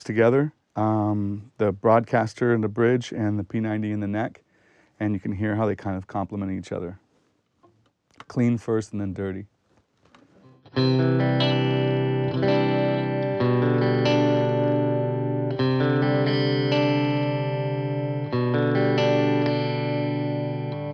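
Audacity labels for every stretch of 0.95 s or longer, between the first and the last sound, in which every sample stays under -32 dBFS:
6.920000	8.200000	silence
9.420000	10.760000	silence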